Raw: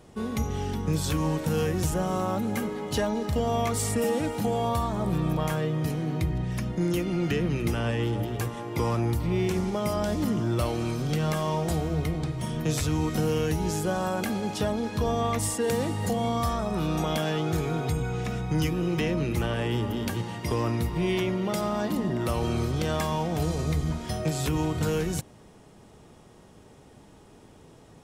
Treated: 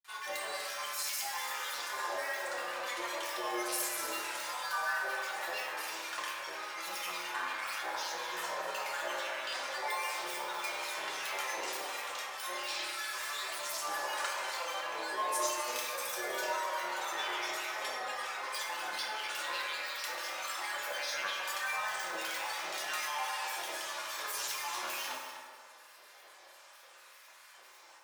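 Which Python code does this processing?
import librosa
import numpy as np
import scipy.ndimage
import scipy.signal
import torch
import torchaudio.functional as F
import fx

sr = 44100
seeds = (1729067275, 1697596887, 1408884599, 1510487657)

p1 = scipy.signal.sosfilt(scipy.signal.butter(4, 1100.0, 'highpass', fs=sr, output='sos'), x)
p2 = fx.over_compress(p1, sr, threshold_db=-46.0, ratio=-1.0)
p3 = p1 + (p2 * 10.0 ** (-2.0 / 20.0))
p4 = fx.quant_float(p3, sr, bits=2)
p5 = fx.granulator(p4, sr, seeds[0], grain_ms=100.0, per_s=20.0, spray_ms=100.0, spread_st=12)
p6 = p5 + fx.echo_single(p5, sr, ms=247, db=-10.0, dry=0)
p7 = fx.rev_fdn(p6, sr, rt60_s=1.8, lf_ratio=0.75, hf_ratio=0.4, size_ms=17.0, drr_db=-5.5)
y = p7 * 10.0 ** (-5.5 / 20.0)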